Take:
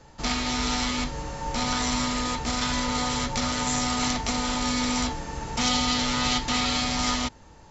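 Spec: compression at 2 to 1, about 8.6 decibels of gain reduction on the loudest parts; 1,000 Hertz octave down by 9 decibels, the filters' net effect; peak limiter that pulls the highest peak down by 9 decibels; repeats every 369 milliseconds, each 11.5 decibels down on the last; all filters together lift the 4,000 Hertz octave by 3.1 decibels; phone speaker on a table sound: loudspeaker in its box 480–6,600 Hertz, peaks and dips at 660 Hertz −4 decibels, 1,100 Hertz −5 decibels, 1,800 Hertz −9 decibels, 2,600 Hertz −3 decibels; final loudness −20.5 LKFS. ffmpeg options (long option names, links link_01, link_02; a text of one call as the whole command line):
ffmpeg -i in.wav -af "equalizer=frequency=1000:width_type=o:gain=-8,equalizer=frequency=4000:width_type=o:gain=5,acompressor=threshold=-35dB:ratio=2,alimiter=level_in=1.5dB:limit=-24dB:level=0:latency=1,volume=-1.5dB,highpass=frequency=480:width=0.5412,highpass=frequency=480:width=1.3066,equalizer=frequency=660:width_type=q:width=4:gain=-4,equalizer=frequency=1100:width_type=q:width=4:gain=-5,equalizer=frequency=1800:width_type=q:width=4:gain=-9,equalizer=frequency=2600:width_type=q:width=4:gain=-3,lowpass=frequency=6600:width=0.5412,lowpass=frequency=6600:width=1.3066,aecho=1:1:369|738|1107:0.266|0.0718|0.0194,volume=16dB" out.wav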